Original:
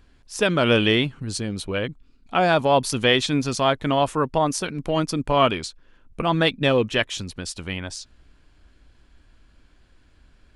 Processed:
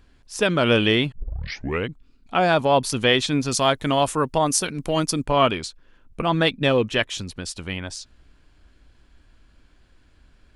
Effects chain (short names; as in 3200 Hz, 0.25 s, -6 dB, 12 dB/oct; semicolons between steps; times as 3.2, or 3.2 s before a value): 1.12 tape start 0.77 s; 3.51–5.25 high shelf 5600 Hz +12 dB